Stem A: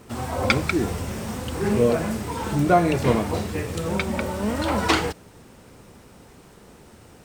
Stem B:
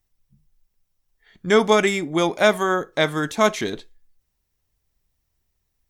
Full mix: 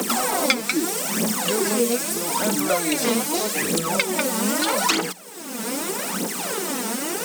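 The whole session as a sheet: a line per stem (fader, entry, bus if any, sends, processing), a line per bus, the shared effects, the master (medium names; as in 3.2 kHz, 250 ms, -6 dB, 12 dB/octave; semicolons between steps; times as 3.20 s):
-3.5 dB, 0.00 s, no send, steep high-pass 170 Hz 96 dB/octave; treble shelf 3.6 kHz +10 dB; phaser 0.8 Hz, delay 4.6 ms, feedback 72%
-13.0 dB, 0.00 s, no send, de-esser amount 90%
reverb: none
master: treble shelf 3.9 kHz +8.5 dB; three bands compressed up and down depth 100%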